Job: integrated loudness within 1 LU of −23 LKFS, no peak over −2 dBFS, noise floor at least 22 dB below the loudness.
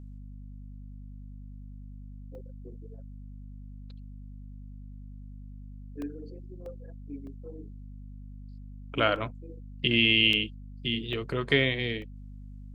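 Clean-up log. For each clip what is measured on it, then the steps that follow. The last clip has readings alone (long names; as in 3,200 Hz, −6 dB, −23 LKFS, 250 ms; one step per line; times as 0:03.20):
number of dropouts 8; longest dropout 1.8 ms; mains hum 50 Hz; hum harmonics up to 250 Hz; level of the hum −41 dBFS; integrated loudness −26.5 LKFS; sample peak −8.5 dBFS; target loudness −23.0 LKFS
→ repair the gap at 0:02.35/0:06.02/0:06.66/0:07.27/0:09.16/0:10.33/0:11.13/0:12.02, 1.8 ms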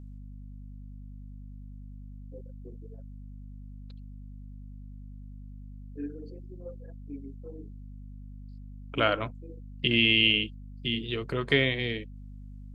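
number of dropouts 0; mains hum 50 Hz; hum harmonics up to 250 Hz; level of the hum −41 dBFS
→ hum removal 50 Hz, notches 5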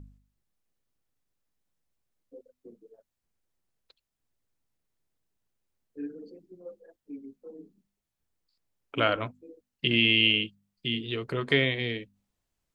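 mains hum none found; integrated loudness −26.0 LKFS; sample peak −8.5 dBFS; target loudness −23.0 LKFS
→ level +3 dB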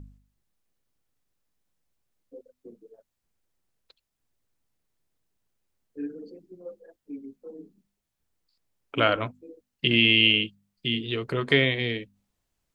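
integrated loudness −23.0 LKFS; sample peak −5.5 dBFS; background noise floor −82 dBFS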